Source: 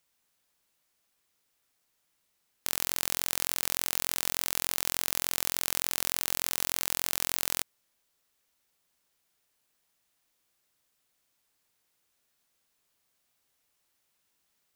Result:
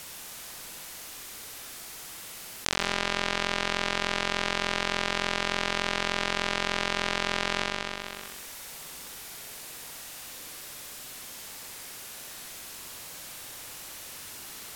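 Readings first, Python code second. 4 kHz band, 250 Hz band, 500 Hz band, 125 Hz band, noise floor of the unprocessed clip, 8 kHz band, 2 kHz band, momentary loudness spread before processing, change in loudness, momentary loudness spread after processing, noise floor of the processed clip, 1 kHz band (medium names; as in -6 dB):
+5.5 dB, +11.0 dB, +12.0 dB, +8.5 dB, -76 dBFS, -4.0 dB, +10.5 dB, 2 LU, -2.5 dB, 12 LU, -43 dBFS, +11.0 dB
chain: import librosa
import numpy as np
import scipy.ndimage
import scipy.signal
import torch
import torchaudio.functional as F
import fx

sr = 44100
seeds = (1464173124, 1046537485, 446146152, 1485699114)

y = fx.tracing_dist(x, sr, depth_ms=0.031)
y = fx.env_lowpass_down(y, sr, base_hz=3000.0, full_db=-36.5)
y = fx.room_flutter(y, sr, wall_m=11.0, rt60_s=0.89)
y = fx.env_flatten(y, sr, amount_pct=70)
y = y * librosa.db_to_amplitude(-1.0)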